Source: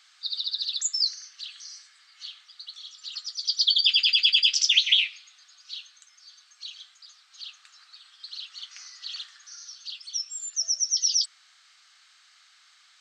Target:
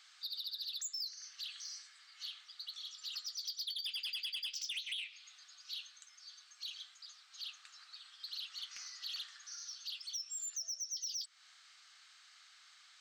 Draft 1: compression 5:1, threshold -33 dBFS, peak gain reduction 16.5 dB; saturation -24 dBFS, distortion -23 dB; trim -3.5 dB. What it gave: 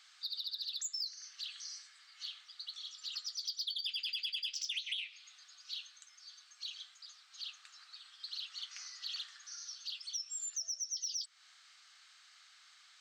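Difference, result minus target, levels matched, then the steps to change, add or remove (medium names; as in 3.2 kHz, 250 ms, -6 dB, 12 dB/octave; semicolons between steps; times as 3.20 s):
saturation: distortion -10 dB
change: saturation -31 dBFS, distortion -14 dB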